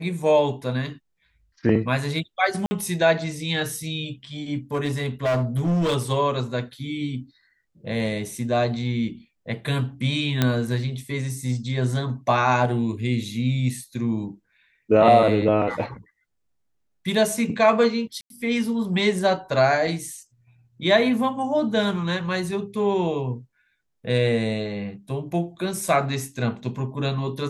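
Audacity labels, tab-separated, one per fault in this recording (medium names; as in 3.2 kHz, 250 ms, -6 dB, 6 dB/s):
2.660000	2.710000	dropout 50 ms
4.740000	5.960000	clipped -18.5 dBFS
10.420000	10.420000	pop -6 dBFS
18.210000	18.300000	dropout 92 ms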